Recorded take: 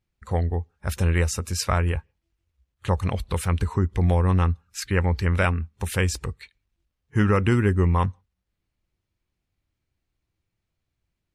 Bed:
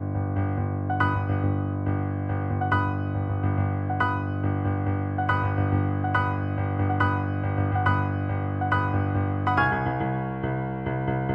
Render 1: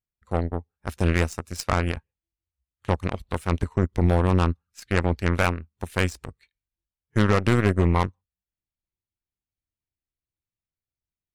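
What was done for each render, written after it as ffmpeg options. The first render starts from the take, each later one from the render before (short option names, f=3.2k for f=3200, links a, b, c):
-af "aeval=exprs='0.422*(cos(1*acos(clip(val(0)/0.422,-1,1)))-cos(1*PI/2))+0.0237*(cos(4*acos(clip(val(0)/0.422,-1,1)))-cos(4*PI/2))+0.00237*(cos(5*acos(clip(val(0)/0.422,-1,1)))-cos(5*PI/2))+0.00237*(cos(6*acos(clip(val(0)/0.422,-1,1)))-cos(6*PI/2))+0.0531*(cos(7*acos(clip(val(0)/0.422,-1,1)))-cos(7*PI/2))':c=same"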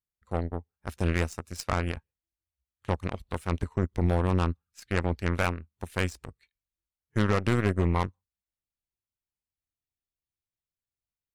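-af "volume=-5dB"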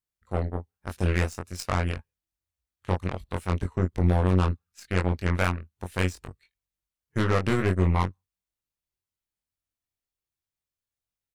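-filter_complex "[0:a]asplit=2[a][b];[b]adelay=22,volume=-4dB[c];[a][c]amix=inputs=2:normalize=0"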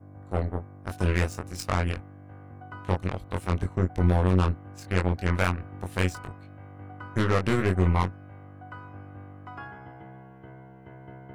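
-filter_complex "[1:a]volume=-19dB[a];[0:a][a]amix=inputs=2:normalize=0"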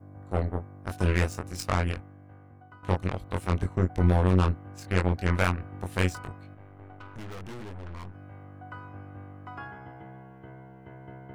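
-filter_complex "[0:a]asettb=1/sr,asplit=3[a][b][c];[a]atrim=end=6.544[d];[b]atrim=start=6.54:end=8.15,asetpts=PTS-STARTPTS,afade=t=in:d=0.004:c=qsin,afade=t=out:st=1.606:d=0.004:c=qsin,aeval=exprs='(tanh(89.1*val(0)+0.8)-tanh(0.8))/89.1':c=same[e];[c]atrim=start=8.146[f];[d][e]acrossfade=d=0.004:c1=hsin:c2=qsin[g];[g][f]acrossfade=d=0.004:c1=qsin:c2=hsin,asplit=2[h][i];[h]atrim=end=2.83,asetpts=PTS-STARTPTS,afade=t=out:st=1.73:d=1.1:silence=0.266073[j];[i]atrim=start=2.83,asetpts=PTS-STARTPTS,afade=t=in:d=0.004:c=hsin:silence=0.266073[k];[j][k]concat=n=2:v=0:a=1"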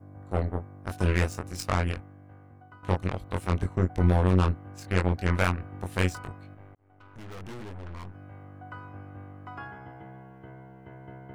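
-filter_complex "[0:a]asplit=2[a][b];[a]atrim=end=6.75,asetpts=PTS-STARTPTS,afade=t=out:st=6.746:d=0.004:c=hsin[c];[b]atrim=start=6.75,asetpts=PTS-STARTPTS,afade=t=in:d=0.7[d];[c][d]concat=n=2:v=0:a=1"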